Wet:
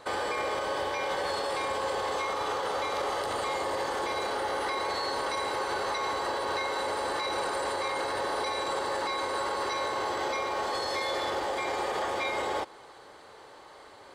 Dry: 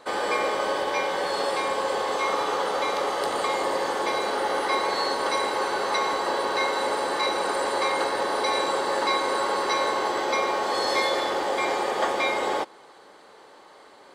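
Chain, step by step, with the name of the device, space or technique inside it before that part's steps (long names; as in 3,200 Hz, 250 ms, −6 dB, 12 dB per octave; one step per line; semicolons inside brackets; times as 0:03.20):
car stereo with a boomy subwoofer (low shelf with overshoot 140 Hz +8.5 dB, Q 1.5; brickwall limiter −22.5 dBFS, peak gain reduction 10 dB)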